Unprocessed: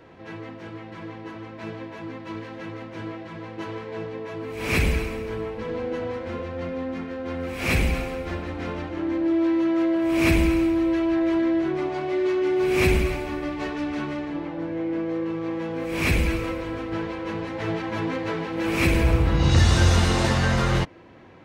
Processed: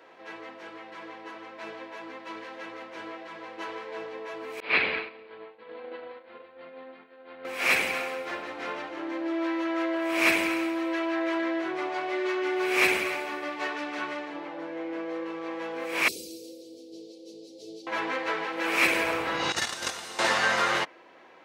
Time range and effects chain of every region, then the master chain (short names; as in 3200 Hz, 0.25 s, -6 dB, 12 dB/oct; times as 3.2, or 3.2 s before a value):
4.6–7.45 expander -23 dBFS + steep low-pass 4500 Hz 72 dB/oct
16.08–17.87 elliptic band-stop 420–4500 Hz, stop band 70 dB + low shelf 340 Hz -11 dB
19.52–20.19 gate -15 dBFS, range -15 dB + high shelf 6900 Hz +11 dB
whole clip: HPF 530 Hz 12 dB/oct; dynamic EQ 1700 Hz, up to +4 dB, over -38 dBFS, Q 0.82